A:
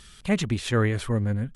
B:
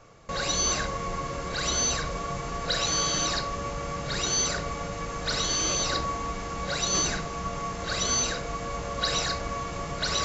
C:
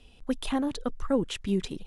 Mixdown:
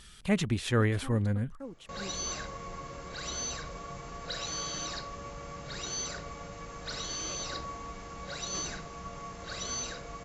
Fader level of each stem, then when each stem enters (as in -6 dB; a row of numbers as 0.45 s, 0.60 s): -3.5 dB, -10.0 dB, -17.5 dB; 0.00 s, 1.60 s, 0.50 s